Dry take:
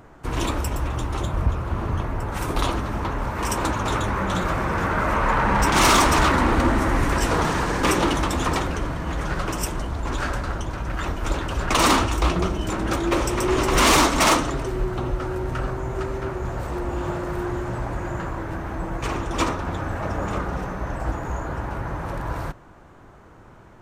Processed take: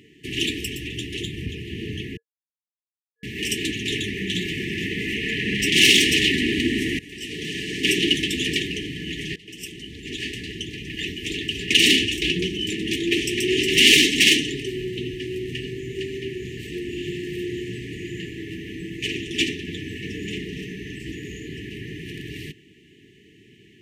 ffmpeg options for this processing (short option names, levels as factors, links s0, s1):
-filter_complex "[0:a]asplit=5[s0][s1][s2][s3][s4];[s0]atrim=end=2.17,asetpts=PTS-STARTPTS,afade=t=out:st=2.166:d=0.004:c=hsin[s5];[s1]atrim=start=2.17:end=3.23,asetpts=PTS-STARTPTS,volume=0[s6];[s2]atrim=start=3.23:end=6.99,asetpts=PTS-STARTPTS,afade=t=in:d=0.004:c=hsin,afade=t=out:st=3.756:d=0.004:c=hsin:silence=0.0794328[s7];[s3]atrim=start=6.99:end=9.36,asetpts=PTS-STARTPTS,afade=t=in:d=1.09:silence=0.0794328,afade=t=out:st=2.366:d=0.004:c=hsin:silence=0.0749894[s8];[s4]atrim=start=9.36,asetpts=PTS-STARTPTS,afade=t=in:d=1.43:c=qsin:silence=0.0749894[s9];[s5][s6][s7][s8][s9]concat=n=5:v=0:a=1,highpass=150,equalizer=f=2900:t=o:w=0.54:g=14,afftfilt=real='re*(1-between(b*sr/4096,460,1700))':imag='im*(1-between(b*sr/4096,460,1700))':win_size=4096:overlap=0.75"